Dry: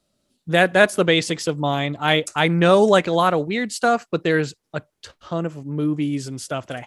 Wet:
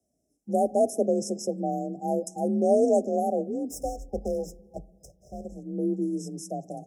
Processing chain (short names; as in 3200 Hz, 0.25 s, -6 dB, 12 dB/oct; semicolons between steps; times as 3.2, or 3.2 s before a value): 3.69–5.52 minimum comb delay 2 ms; frequency shift +39 Hz; on a send at -24 dB: reverb RT60 1.6 s, pre-delay 3 ms; on the sum: FFT band-reject 810–5100 Hz; gain -6 dB